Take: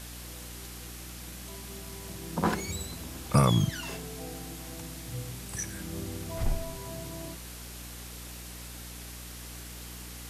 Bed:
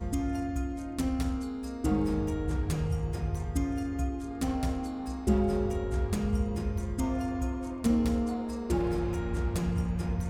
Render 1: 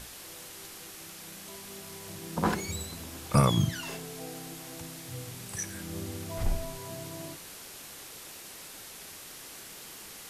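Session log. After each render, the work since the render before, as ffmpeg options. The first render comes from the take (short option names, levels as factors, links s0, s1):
-af "bandreject=f=60:t=h:w=6,bandreject=f=120:t=h:w=6,bandreject=f=180:t=h:w=6,bandreject=f=240:t=h:w=6,bandreject=f=300:t=h:w=6,bandreject=f=360:t=h:w=6"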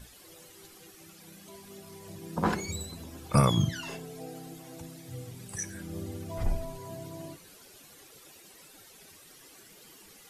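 -af "afftdn=nr=12:nf=-46"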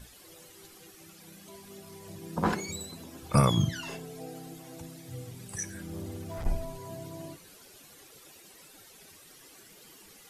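-filter_complex "[0:a]asettb=1/sr,asplit=3[s0][s1][s2];[s0]atrim=end=2.534[s3];[s1]atrim=start=2.53:end=3.23,asetpts=PTS-STARTPTS,afade=t=in:d=0.004:c=qsin,afade=t=out:st=0.696:d=0.004:c=qsin,highpass=130[s4];[s2]atrim=start=3.226[s5];[s3][s4]acrossfade=d=0.004:c1=hsin:c2=qsin[s6];[s6][s5]acrossfade=d=0.004:c1=qsin:c2=hsin,asettb=1/sr,asplit=3[s7][s8][s9];[s7]atrim=end=5.724[s10];[s8]atrim=start=5.72:end=6.46,asetpts=PTS-STARTPTS,afade=t=in:d=0.004:c=qsin,afade=t=out:st=0.736:d=0.004:c=qsin,asoftclip=type=hard:threshold=0.0211[s11];[s9]atrim=start=6.456[s12];[s10][s11]acrossfade=d=0.004:c1=hsin:c2=qsin[s13];[s13][s12]acrossfade=d=0.004:c1=qsin:c2=hsin"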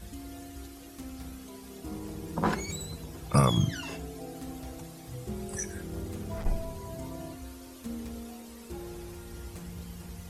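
-filter_complex "[1:a]volume=0.237[s0];[0:a][s0]amix=inputs=2:normalize=0"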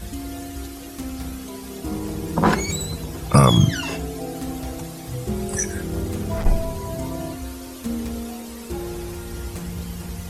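-af "volume=3.55,alimiter=limit=0.708:level=0:latency=1"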